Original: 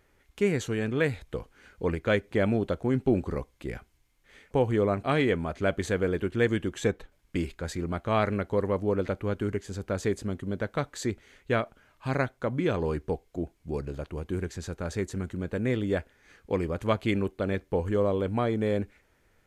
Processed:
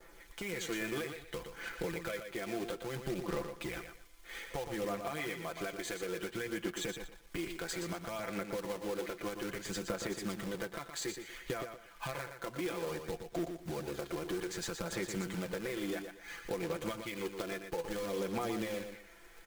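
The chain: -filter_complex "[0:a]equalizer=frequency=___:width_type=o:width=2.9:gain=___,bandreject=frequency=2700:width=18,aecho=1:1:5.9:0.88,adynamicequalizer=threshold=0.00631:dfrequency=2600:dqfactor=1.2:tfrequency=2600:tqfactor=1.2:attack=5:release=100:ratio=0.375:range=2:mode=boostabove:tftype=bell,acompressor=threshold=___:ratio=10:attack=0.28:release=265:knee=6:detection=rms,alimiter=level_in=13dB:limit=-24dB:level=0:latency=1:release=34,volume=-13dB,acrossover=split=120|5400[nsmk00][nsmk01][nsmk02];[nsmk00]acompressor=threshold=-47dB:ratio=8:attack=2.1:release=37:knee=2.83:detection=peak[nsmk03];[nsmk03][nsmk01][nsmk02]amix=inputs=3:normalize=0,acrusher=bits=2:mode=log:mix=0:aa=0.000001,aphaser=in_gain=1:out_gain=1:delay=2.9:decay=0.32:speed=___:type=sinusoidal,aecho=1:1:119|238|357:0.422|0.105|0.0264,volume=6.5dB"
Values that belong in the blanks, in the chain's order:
85, -14, -37dB, 0.6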